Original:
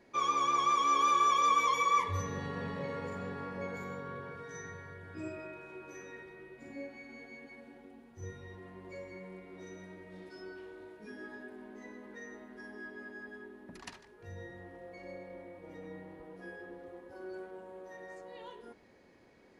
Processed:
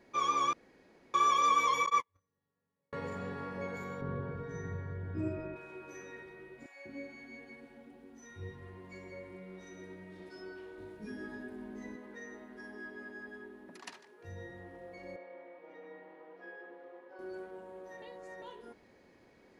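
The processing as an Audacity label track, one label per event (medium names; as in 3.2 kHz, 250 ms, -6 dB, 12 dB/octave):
0.530000	1.140000	room tone
1.860000	2.930000	gate -28 dBFS, range -48 dB
4.010000	5.560000	tilt EQ -3.5 dB/octave
6.660000	10.200000	bands offset in time highs, lows 190 ms, split 670 Hz
10.780000	11.960000	tone controls bass +11 dB, treble +3 dB
13.680000	14.250000	high-pass 260 Hz
15.160000	17.190000	band-pass 450–3100 Hz
18.020000	18.420000	reverse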